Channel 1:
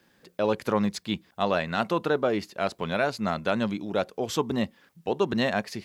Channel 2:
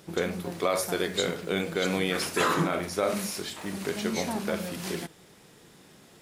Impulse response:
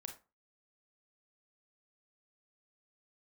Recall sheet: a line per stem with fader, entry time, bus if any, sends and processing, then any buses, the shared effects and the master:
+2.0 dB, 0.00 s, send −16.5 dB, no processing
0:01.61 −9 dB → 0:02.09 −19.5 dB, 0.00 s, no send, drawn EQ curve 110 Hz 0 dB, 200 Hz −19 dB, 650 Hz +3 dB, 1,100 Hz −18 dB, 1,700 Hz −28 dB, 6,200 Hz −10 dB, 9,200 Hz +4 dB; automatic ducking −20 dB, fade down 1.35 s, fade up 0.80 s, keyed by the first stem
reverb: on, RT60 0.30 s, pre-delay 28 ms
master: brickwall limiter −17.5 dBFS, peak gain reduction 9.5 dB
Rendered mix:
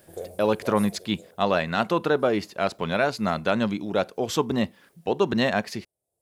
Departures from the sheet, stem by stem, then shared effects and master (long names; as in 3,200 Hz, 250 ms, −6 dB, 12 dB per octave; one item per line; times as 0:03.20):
stem 2 −9.0 dB → 0.0 dB
master: missing brickwall limiter −17.5 dBFS, peak gain reduction 9.5 dB